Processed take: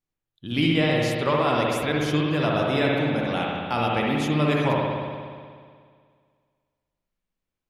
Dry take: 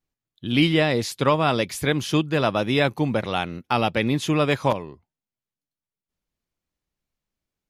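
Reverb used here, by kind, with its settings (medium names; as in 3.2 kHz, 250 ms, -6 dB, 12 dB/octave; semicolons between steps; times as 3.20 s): spring tank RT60 2 s, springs 60 ms, chirp 55 ms, DRR -3 dB; trim -5.5 dB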